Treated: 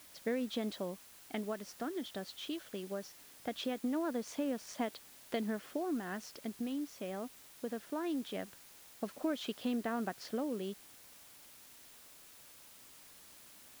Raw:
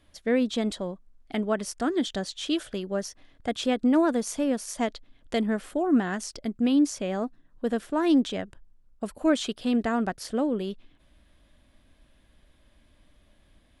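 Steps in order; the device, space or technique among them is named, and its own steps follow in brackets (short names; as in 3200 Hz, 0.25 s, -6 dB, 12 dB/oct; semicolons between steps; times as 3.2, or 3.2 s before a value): medium wave at night (BPF 170–4400 Hz; compressor, threshold -28 dBFS, peak gain reduction 10 dB; tremolo 0.21 Hz, depth 42%; whine 10000 Hz -65 dBFS; white noise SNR 17 dB); gain -4 dB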